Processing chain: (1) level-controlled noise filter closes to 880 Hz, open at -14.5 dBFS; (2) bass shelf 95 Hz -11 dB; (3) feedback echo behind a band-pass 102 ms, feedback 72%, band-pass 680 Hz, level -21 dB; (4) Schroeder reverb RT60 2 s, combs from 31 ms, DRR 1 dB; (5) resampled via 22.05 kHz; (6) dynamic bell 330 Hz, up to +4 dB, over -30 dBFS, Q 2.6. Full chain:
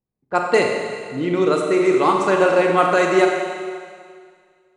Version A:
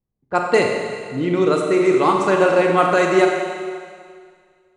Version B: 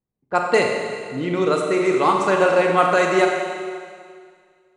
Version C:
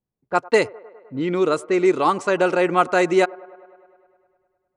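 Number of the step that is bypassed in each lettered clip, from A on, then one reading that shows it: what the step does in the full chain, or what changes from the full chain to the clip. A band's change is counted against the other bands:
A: 2, 125 Hz band +2.5 dB; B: 6, loudness change -1.0 LU; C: 4, momentary loudness spread change -4 LU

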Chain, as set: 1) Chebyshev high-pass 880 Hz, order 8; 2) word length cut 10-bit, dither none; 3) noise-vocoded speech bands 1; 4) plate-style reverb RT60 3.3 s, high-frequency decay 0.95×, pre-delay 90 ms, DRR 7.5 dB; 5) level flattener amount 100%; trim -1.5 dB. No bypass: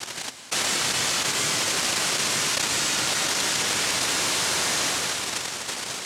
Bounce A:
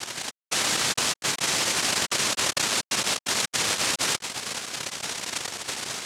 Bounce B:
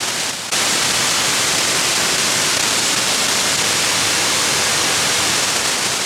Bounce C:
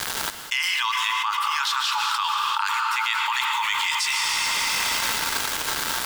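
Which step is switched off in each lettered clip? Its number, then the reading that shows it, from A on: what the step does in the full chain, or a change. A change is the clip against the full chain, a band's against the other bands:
4, momentary loudness spread change +2 LU; 1, crest factor change -2.5 dB; 3, 8 kHz band -9.0 dB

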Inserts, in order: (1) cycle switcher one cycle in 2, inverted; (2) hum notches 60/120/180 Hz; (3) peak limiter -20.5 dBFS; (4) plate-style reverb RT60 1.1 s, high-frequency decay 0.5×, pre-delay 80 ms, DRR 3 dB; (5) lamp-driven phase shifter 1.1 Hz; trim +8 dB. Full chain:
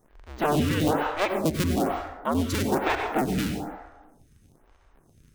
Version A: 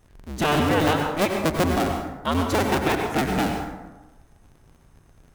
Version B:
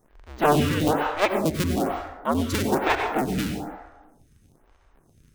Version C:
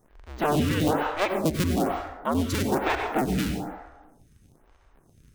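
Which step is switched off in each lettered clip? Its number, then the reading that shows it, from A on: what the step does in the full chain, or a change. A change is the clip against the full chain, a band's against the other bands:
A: 5, 4 kHz band +2.0 dB; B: 3, momentary loudness spread change +1 LU; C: 2, momentary loudness spread change +1 LU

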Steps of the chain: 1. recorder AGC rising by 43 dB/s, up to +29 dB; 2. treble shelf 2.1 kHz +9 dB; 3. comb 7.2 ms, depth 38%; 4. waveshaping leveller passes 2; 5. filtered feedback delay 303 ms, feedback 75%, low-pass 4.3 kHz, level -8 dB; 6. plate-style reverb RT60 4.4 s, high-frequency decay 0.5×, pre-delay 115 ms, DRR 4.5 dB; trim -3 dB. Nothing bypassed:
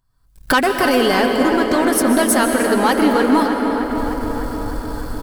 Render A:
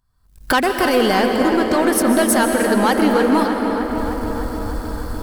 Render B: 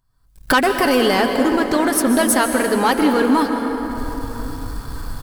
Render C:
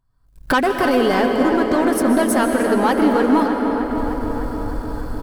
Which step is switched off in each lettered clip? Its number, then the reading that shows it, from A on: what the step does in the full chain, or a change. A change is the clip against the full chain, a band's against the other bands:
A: 3, 125 Hz band +2.5 dB; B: 5, echo-to-direct -1.0 dB to -4.5 dB; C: 2, 8 kHz band -6.5 dB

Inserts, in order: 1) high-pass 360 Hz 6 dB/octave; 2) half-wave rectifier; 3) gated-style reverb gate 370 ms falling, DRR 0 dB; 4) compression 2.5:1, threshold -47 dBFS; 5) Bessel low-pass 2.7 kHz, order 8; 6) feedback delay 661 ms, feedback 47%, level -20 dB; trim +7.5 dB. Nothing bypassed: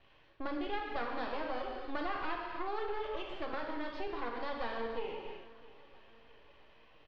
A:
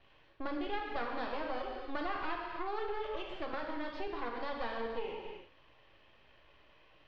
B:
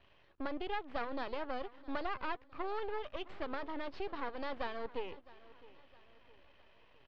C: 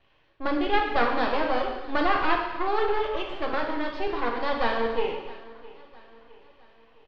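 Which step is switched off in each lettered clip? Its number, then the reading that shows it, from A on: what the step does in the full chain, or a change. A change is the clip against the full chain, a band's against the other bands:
6, momentary loudness spread change -4 LU; 3, momentary loudness spread change +5 LU; 4, mean gain reduction 11.0 dB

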